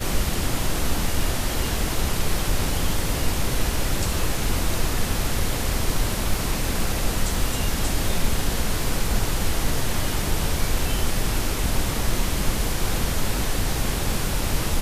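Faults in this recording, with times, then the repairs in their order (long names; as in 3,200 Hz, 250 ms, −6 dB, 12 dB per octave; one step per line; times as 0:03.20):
0:06.34: drop-out 2 ms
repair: repair the gap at 0:06.34, 2 ms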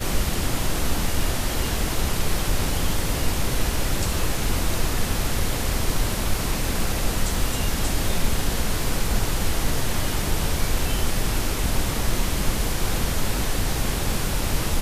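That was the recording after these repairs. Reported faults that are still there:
none of them is left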